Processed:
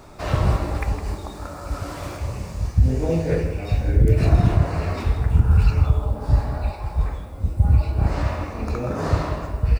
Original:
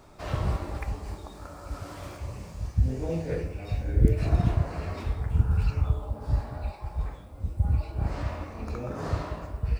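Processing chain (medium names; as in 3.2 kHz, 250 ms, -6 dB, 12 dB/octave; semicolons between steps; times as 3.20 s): band-stop 3.2 kHz, Q 24; delay 160 ms -12.5 dB; loudness maximiser +13.5 dB; trim -5 dB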